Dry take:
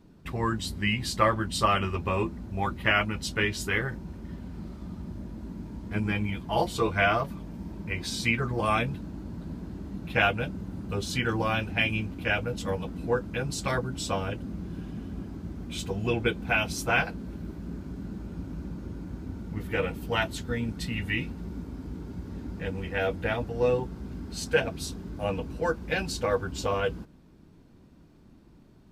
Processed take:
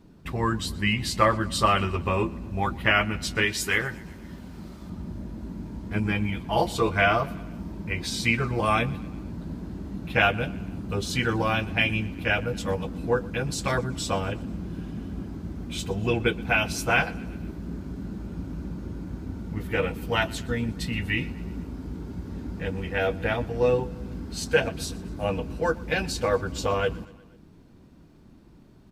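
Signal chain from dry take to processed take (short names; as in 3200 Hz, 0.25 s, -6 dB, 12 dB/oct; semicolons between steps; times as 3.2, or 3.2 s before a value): 3.42–4.9 tilt +1.5 dB/oct; on a send: feedback echo 0.121 s, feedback 58%, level -22 dB; on the sum: gain +2.5 dB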